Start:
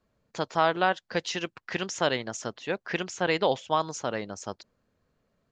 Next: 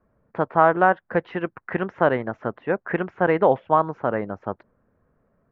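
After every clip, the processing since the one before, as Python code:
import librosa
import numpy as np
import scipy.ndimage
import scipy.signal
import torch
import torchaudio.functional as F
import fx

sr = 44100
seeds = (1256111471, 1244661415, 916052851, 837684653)

y = scipy.signal.sosfilt(scipy.signal.butter(4, 1700.0, 'lowpass', fs=sr, output='sos'), x)
y = y * librosa.db_to_amplitude(7.5)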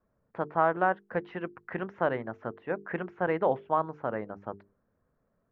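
y = fx.hum_notches(x, sr, base_hz=50, count=9)
y = y * librosa.db_to_amplitude(-8.5)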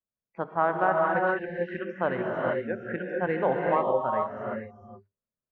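y = fx.noise_reduce_blind(x, sr, reduce_db=26)
y = fx.rev_gated(y, sr, seeds[0], gate_ms=480, shape='rising', drr_db=-1.0)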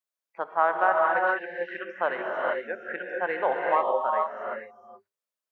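y = scipy.signal.sosfilt(scipy.signal.butter(2, 630.0, 'highpass', fs=sr, output='sos'), x)
y = y * librosa.db_to_amplitude(3.5)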